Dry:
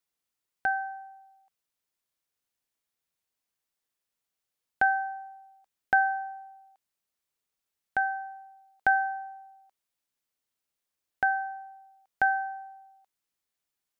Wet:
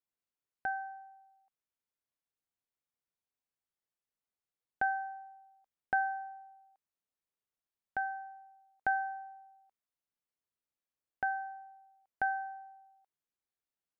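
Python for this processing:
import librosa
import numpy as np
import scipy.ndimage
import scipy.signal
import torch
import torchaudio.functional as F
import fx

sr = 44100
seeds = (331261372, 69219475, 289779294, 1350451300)

y = fx.high_shelf(x, sr, hz=2400.0, db=-10.0)
y = y * librosa.db_to_amplitude(-6.0)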